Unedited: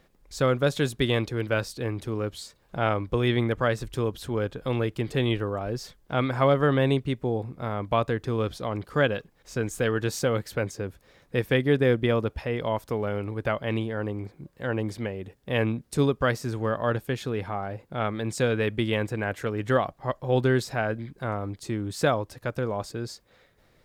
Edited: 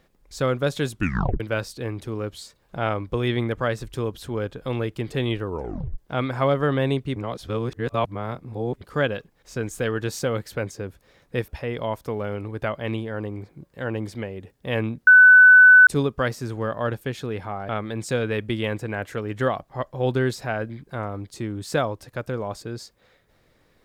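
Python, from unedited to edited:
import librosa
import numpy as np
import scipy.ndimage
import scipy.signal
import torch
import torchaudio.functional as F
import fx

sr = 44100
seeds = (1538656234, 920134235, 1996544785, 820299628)

y = fx.edit(x, sr, fx.tape_stop(start_s=0.91, length_s=0.49),
    fx.tape_stop(start_s=5.46, length_s=0.52),
    fx.reverse_span(start_s=7.16, length_s=1.65),
    fx.cut(start_s=11.48, length_s=0.83),
    fx.insert_tone(at_s=15.9, length_s=0.8, hz=1500.0, db=-7.0),
    fx.cut(start_s=17.72, length_s=0.26), tone=tone)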